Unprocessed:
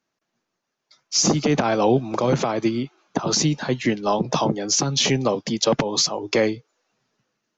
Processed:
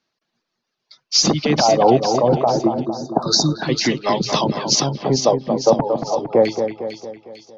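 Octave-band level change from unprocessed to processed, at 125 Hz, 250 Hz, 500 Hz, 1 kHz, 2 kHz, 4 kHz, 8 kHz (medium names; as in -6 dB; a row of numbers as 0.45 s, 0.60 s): +2.0 dB, +2.0 dB, +5.5 dB, +6.0 dB, -0.5 dB, +3.5 dB, no reading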